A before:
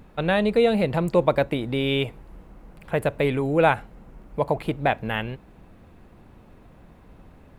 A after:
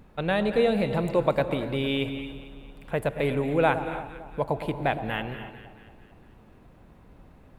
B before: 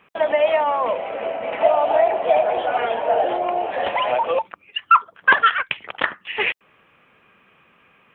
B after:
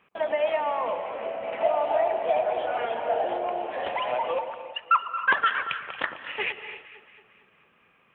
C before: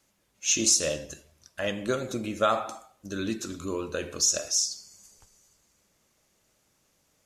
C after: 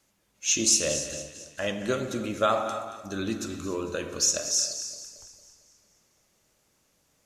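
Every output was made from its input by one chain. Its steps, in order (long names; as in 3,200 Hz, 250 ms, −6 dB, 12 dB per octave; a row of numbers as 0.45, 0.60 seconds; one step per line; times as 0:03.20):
delay that swaps between a low-pass and a high-pass 113 ms, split 1,100 Hz, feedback 71%, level −11 dB
reverb whose tail is shaped and stops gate 320 ms rising, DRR 11 dB
loudness normalisation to −27 LKFS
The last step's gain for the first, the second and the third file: −4.0, −7.5, 0.0 decibels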